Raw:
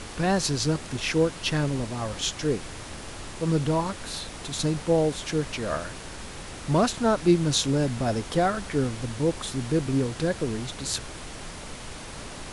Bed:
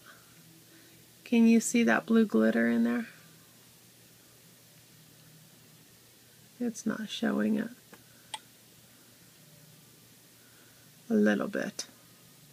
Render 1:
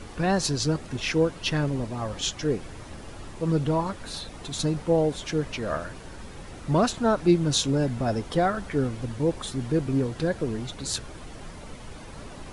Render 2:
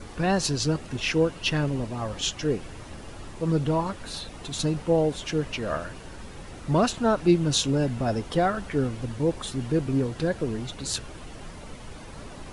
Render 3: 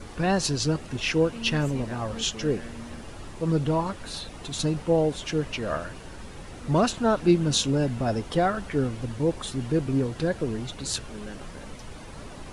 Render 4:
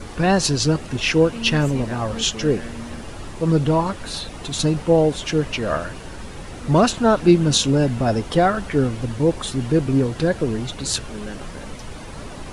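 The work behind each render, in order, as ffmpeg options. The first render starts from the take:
ffmpeg -i in.wav -af "afftdn=noise_reduction=9:noise_floor=-40" out.wav
ffmpeg -i in.wav -af "adynamicequalizer=threshold=0.00224:dfrequency=2800:dqfactor=8:tfrequency=2800:tqfactor=8:attack=5:release=100:ratio=0.375:range=3:mode=boostabove:tftype=bell" out.wav
ffmpeg -i in.wav -i bed.wav -filter_complex "[1:a]volume=-15.5dB[link_01];[0:a][link_01]amix=inputs=2:normalize=0" out.wav
ffmpeg -i in.wav -af "volume=6.5dB,alimiter=limit=-3dB:level=0:latency=1" out.wav

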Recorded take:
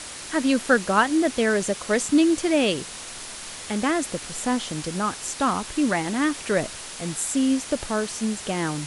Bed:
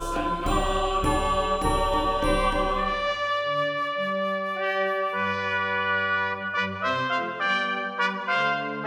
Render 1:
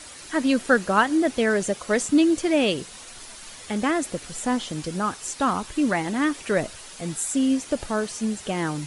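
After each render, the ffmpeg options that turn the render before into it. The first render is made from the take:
ffmpeg -i in.wav -af "afftdn=noise_reduction=8:noise_floor=-38" out.wav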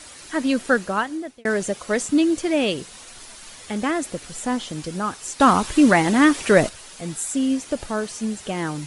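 ffmpeg -i in.wav -filter_complex "[0:a]asplit=4[link_01][link_02][link_03][link_04];[link_01]atrim=end=1.45,asetpts=PTS-STARTPTS,afade=type=out:start_time=0.73:duration=0.72[link_05];[link_02]atrim=start=1.45:end=5.402,asetpts=PTS-STARTPTS,afade=type=in:duration=0.004:curve=hsin[link_06];[link_03]atrim=start=5.398:end=6.692,asetpts=PTS-STARTPTS,volume=8dB[link_07];[link_04]atrim=start=6.688[link_08];[link_05][link_06]concat=n=2:v=0:a=1[link_09];[link_09][link_07]acrossfade=duration=0.004:curve1=hsin:curve2=hsin[link_10];[link_10][link_08]acrossfade=duration=0.004:curve1=hsin:curve2=hsin" out.wav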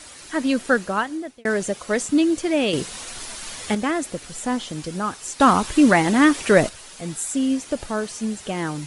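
ffmpeg -i in.wav -filter_complex "[0:a]asettb=1/sr,asplit=3[link_01][link_02][link_03];[link_01]atrim=end=2.734[link_04];[link_02]atrim=start=2.73:end=3.75,asetpts=PTS-STARTPTS,afade=type=in:duration=0.004:curve=qsin,afade=type=out:start_time=1.016:duration=0.004:curve=qsin,acontrast=84[link_05];[link_03]atrim=start=3.746[link_06];[link_04][link_05]acrossfade=duration=0.004:curve1=hsin:curve2=qsin[link_07];[link_07][link_06]acrossfade=duration=0.004:curve1=qsin:curve2=hsin" out.wav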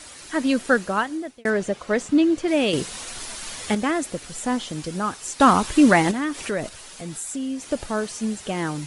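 ffmpeg -i in.wav -filter_complex "[0:a]asettb=1/sr,asplit=3[link_01][link_02][link_03];[link_01]atrim=end=1.504[link_04];[link_02]atrim=start=1.5:end=2.48,asetpts=PTS-STARTPTS,afade=type=in:duration=0.004:curve=qsin,afade=type=out:start_time=0.976:duration=0.004:curve=qsin,aemphasis=mode=reproduction:type=50fm[link_05];[link_03]atrim=start=2.476[link_06];[link_04][link_05]acrossfade=duration=0.004:curve1=hsin:curve2=qsin[link_07];[link_07][link_06]acrossfade=duration=0.004:curve1=qsin:curve2=hsin,asettb=1/sr,asplit=3[link_08][link_09][link_10];[link_08]atrim=end=6.114[link_11];[link_09]atrim=start=6.11:end=7.68,asetpts=PTS-STARTPTS,afade=type=in:duration=0.004:curve=qsin,afade=type=out:start_time=1.566:duration=0.004:curve=qsin,acompressor=threshold=-31dB:ratio=2:attack=3.2:release=140:knee=1:detection=peak[link_12];[link_10]atrim=start=7.676[link_13];[link_11][link_12]acrossfade=duration=0.004:curve1=hsin:curve2=qsin[link_14];[link_14][link_13]acrossfade=duration=0.004:curve1=qsin:curve2=hsin" out.wav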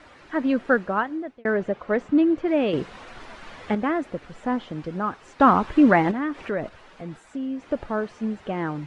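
ffmpeg -i in.wav -af "lowpass=1800,lowshelf=frequency=200:gain=-3" out.wav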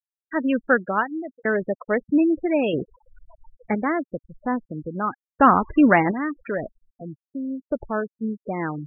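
ffmpeg -i in.wav -af "afftfilt=real='re*gte(hypot(re,im),0.0447)':imag='im*gte(hypot(re,im),0.0447)':win_size=1024:overlap=0.75,highshelf=frequency=2300:gain=8.5" out.wav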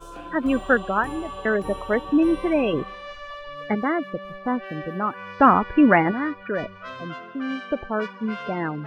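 ffmpeg -i in.wav -i bed.wav -filter_complex "[1:a]volume=-11.5dB[link_01];[0:a][link_01]amix=inputs=2:normalize=0" out.wav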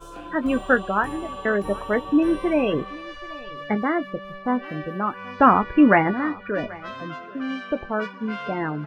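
ffmpeg -i in.wav -filter_complex "[0:a]asplit=2[link_01][link_02];[link_02]adelay=20,volume=-12dB[link_03];[link_01][link_03]amix=inputs=2:normalize=0,aecho=1:1:782:0.0841" out.wav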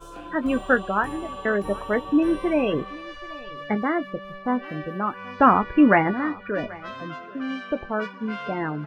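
ffmpeg -i in.wav -af "volume=-1dB" out.wav

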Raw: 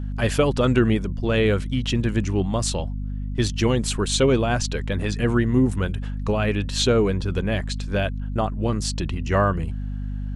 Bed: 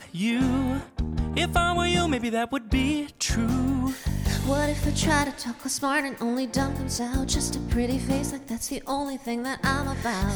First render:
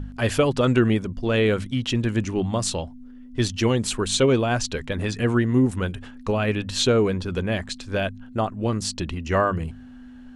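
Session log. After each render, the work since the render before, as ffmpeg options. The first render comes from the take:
ffmpeg -i in.wav -af "bandreject=frequency=50:width_type=h:width=4,bandreject=frequency=100:width_type=h:width=4,bandreject=frequency=150:width_type=h:width=4,bandreject=frequency=200:width_type=h:width=4" out.wav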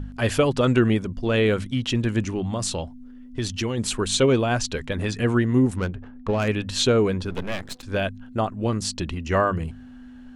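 ffmpeg -i in.wav -filter_complex "[0:a]asplit=3[link_01][link_02][link_03];[link_01]afade=type=out:start_time=2.27:duration=0.02[link_04];[link_02]acompressor=threshold=-22dB:ratio=4:attack=3.2:release=140:knee=1:detection=peak,afade=type=in:start_time=2.27:duration=0.02,afade=type=out:start_time=3.77:duration=0.02[link_05];[link_03]afade=type=in:start_time=3.77:duration=0.02[link_06];[link_04][link_05][link_06]amix=inputs=3:normalize=0,asettb=1/sr,asplit=3[link_07][link_08][link_09];[link_07]atrim=end=5.774[link_10];[link_08]atrim=start=5.77:end=6.48,asetpts=PTS-STARTPTS,afade=type=in:duration=0.004:curve=qsin,afade=type=out:start_time=0.706:duration=0.004:curve=qsin,adynamicsmooth=sensitivity=2.5:basefreq=970[link_11];[link_09]atrim=start=6.476[link_12];[link_10][link_11]acrossfade=duration=0.004:curve1=hsin:curve2=qsin[link_13];[link_13][link_12]acrossfade=duration=0.004:curve1=qsin:curve2=hsin,asettb=1/sr,asplit=3[link_14][link_15][link_16];[link_14]atrim=end=7.304[link_17];[link_15]atrim=start=7.3:end=7.83,asetpts=PTS-STARTPTS,afade=type=in:duration=0.004:curve=qsin,afade=type=out:start_time=0.526:duration=0.004:curve=qsin,aeval=exprs='max(val(0),0)':channel_layout=same[link_18];[link_16]atrim=start=7.826[link_19];[link_17][link_18]acrossfade=duration=0.004:curve1=hsin:curve2=qsin[link_20];[link_20][link_19]acrossfade=duration=0.004:curve1=qsin:curve2=hsin" out.wav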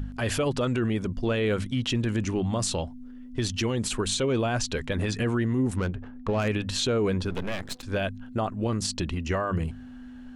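ffmpeg -i in.wav -af "alimiter=limit=-18dB:level=0:latency=1:release=44,acompressor=mode=upward:threshold=-48dB:ratio=2.5" out.wav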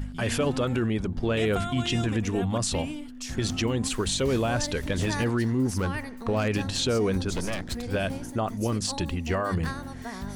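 ffmpeg -i in.wav -i bed.wav -filter_complex "[1:a]volume=-10.5dB[link_01];[0:a][link_01]amix=inputs=2:normalize=0" out.wav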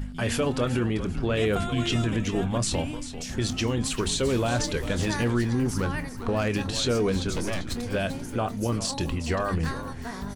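ffmpeg -i in.wav -filter_complex "[0:a]asplit=2[link_01][link_02];[link_02]adelay=25,volume=-13dB[link_03];[link_01][link_03]amix=inputs=2:normalize=0,asplit=4[link_04][link_05][link_06][link_07];[link_05]adelay=392,afreqshift=-90,volume=-11.5dB[link_08];[link_06]adelay=784,afreqshift=-180,volume=-21.1dB[link_09];[link_07]adelay=1176,afreqshift=-270,volume=-30.8dB[link_10];[link_04][link_08][link_09][link_10]amix=inputs=4:normalize=0" out.wav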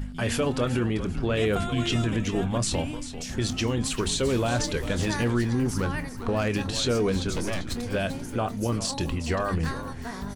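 ffmpeg -i in.wav -af anull out.wav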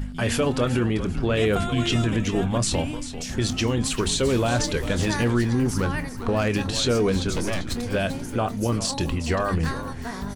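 ffmpeg -i in.wav -af "volume=3dB" out.wav

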